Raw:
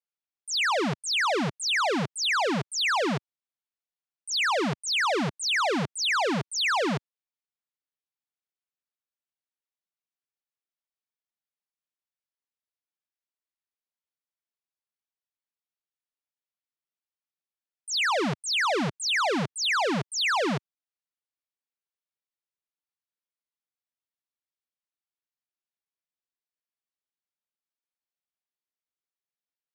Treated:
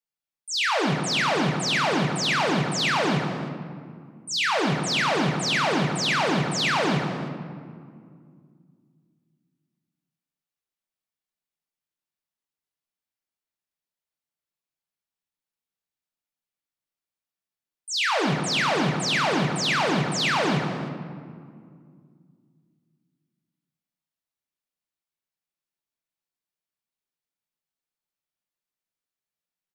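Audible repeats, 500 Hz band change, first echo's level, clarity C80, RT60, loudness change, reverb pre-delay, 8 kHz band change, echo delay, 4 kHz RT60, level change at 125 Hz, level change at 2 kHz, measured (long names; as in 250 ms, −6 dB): 1, +2.5 dB, −14.0 dB, 5.0 dB, 2.1 s, +2.0 dB, 3 ms, +1.0 dB, 311 ms, 1.2 s, +8.0 dB, +2.0 dB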